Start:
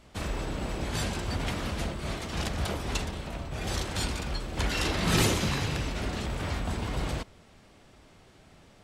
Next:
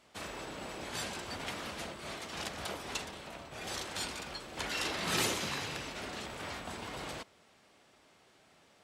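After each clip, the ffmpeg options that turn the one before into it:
ffmpeg -i in.wav -af "highpass=frequency=490:poles=1,volume=-4dB" out.wav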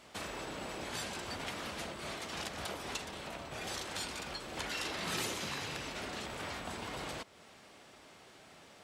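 ffmpeg -i in.wav -af "acompressor=threshold=-51dB:ratio=2,volume=7dB" out.wav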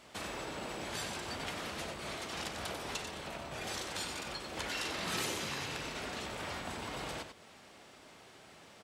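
ffmpeg -i in.wav -af "aecho=1:1:93:0.422" out.wav

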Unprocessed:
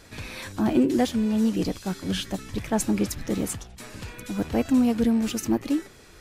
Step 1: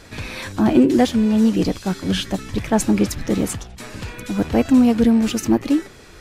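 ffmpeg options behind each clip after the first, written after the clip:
ffmpeg -i in.wav -af "highshelf=frequency=8100:gain=-6.5,volume=7dB" out.wav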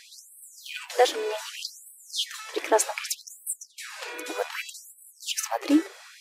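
ffmpeg -i in.wav -af "afftfilt=real='re*gte(b*sr/1024,280*pow(7900/280,0.5+0.5*sin(2*PI*0.65*pts/sr)))':imag='im*gte(b*sr/1024,280*pow(7900/280,0.5+0.5*sin(2*PI*0.65*pts/sr)))':win_size=1024:overlap=0.75" out.wav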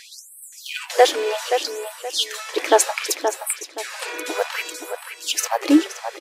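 ffmpeg -i in.wav -filter_complex "[0:a]asplit=2[link_01][link_02];[link_02]adelay=524,lowpass=frequency=3100:poles=1,volume=-7dB,asplit=2[link_03][link_04];[link_04]adelay=524,lowpass=frequency=3100:poles=1,volume=0.3,asplit=2[link_05][link_06];[link_06]adelay=524,lowpass=frequency=3100:poles=1,volume=0.3,asplit=2[link_07][link_08];[link_08]adelay=524,lowpass=frequency=3100:poles=1,volume=0.3[link_09];[link_01][link_03][link_05][link_07][link_09]amix=inputs=5:normalize=0,volume=6.5dB" out.wav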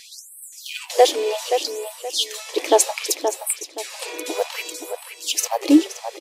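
ffmpeg -i in.wav -af "equalizer=frequency=1500:width=1.6:gain=-13.5,volume=1.5dB" out.wav

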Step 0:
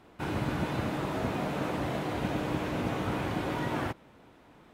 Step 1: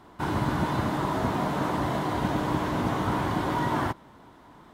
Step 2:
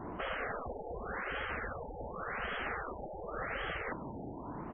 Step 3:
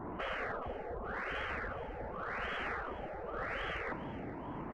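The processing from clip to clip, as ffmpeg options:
ffmpeg -i in.wav -af "equalizer=frequency=500:width_type=o:width=0.33:gain=-5,equalizer=frequency=1000:width_type=o:width=0.33:gain=7,equalizer=frequency=2500:width_type=o:width=0.33:gain=-8,volume=4.5dB" out.wav
ffmpeg -i in.wav -af "afftfilt=real='re*lt(hypot(re,im),0.0501)':imag='im*lt(hypot(re,im),0.0501)':win_size=1024:overlap=0.75,firequalizer=gain_entry='entry(450,0);entry(1700,-8);entry(7100,-11);entry(12000,6)':delay=0.05:min_phase=1,afftfilt=real='re*lt(b*sr/1024,870*pow(3400/870,0.5+0.5*sin(2*PI*0.88*pts/sr)))':imag='im*lt(b*sr/1024,870*pow(3400/870,0.5+0.5*sin(2*PI*0.88*pts/sr)))':win_size=1024:overlap=0.75,volume=10dB" out.wav
ffmpeg -i in.wav -filter_complex "[0:a]asplit=2[link_01][link_02];[link_02]asoftclip=type=tanh:threshold=-39dB,volume=-5dB[link_03];[link_01][link_03]amix=inputs=2:normalize=0,aecho=1:1:422|844|1266|1688|2110:0.178|0.0925|0.0481|0.025|0.013,volume=-3dB" out.wav

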